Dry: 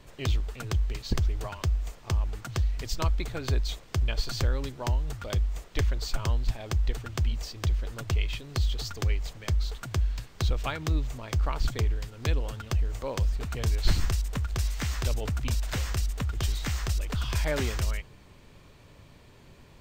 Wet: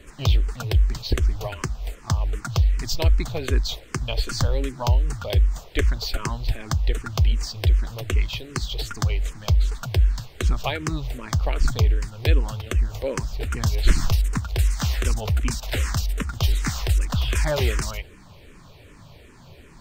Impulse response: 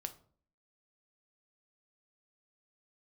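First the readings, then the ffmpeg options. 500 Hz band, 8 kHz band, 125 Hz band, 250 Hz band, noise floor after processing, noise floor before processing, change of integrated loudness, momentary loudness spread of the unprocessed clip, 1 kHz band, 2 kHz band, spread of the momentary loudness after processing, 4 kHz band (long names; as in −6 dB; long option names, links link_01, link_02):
+6.5 dB, +6.0 dB, +6.0 dB, +5.5 dB, −47 dBFS, −53 dBFS, +6.0 dB, 3 LU, +5.5 dB, +5.5 dB, 6 LU, +6.0 dB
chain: -filter_complex "[0:a]asplit=2[link_01][link_02];[link_02]afreqshift=-2.6[link_03];[link_01][link_03]amix=inputs=2:normalize=1,volume=9dB"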